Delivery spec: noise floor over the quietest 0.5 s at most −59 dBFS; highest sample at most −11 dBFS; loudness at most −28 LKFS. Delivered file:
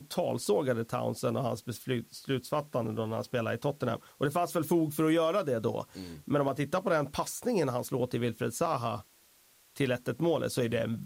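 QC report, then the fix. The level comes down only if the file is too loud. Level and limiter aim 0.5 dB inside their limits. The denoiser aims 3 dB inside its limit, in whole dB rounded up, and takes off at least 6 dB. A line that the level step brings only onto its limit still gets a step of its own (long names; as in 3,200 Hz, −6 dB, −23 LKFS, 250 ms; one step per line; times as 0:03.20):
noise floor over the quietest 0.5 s −63 dBFS: in spec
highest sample −18.0 dBFS: in spec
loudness −31.5 LKFS: in spec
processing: no processing needed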